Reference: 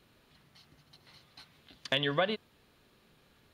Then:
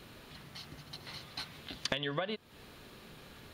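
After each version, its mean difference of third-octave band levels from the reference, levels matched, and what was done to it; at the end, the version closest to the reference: 13.0 dB: compressor 20:1, threshold -43 dBFS, peak gain reduction 20.5 dB; gain +12 dB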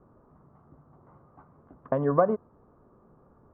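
8.0 dB: elliptic low-pass 1200 Hz, stop band 80 dB; gain +8.5 dB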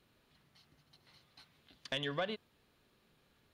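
1.0 dB: soft clip -18 dBFS, distortion -20 dB; gain -6.5 dB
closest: third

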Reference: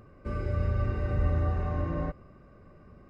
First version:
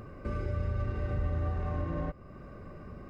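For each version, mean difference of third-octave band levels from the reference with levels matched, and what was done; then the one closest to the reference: 3.5 dB: tracing distortion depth 0.036 ms; compressor 2:1, threshold -46 dBFS, peak gain reduction 13.5 dB; gain +7.5 dB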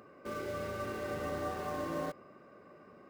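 8.5 dB: HPF 300 Hz 12 dB/oct; in parallel at -9.5 dB: wrapped overs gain 41 dB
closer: first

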